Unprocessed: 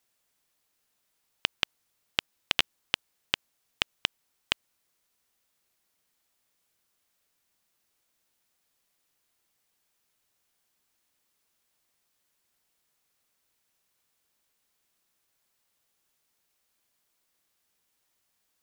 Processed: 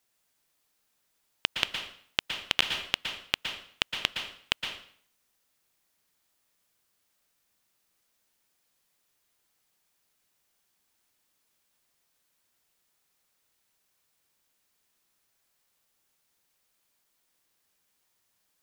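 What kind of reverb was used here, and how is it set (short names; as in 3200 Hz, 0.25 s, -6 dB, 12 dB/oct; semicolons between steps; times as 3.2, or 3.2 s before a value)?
plate-style reverb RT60 0.56 s, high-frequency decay 0.9×, pre-delay 0.105 s, DRR 4 dB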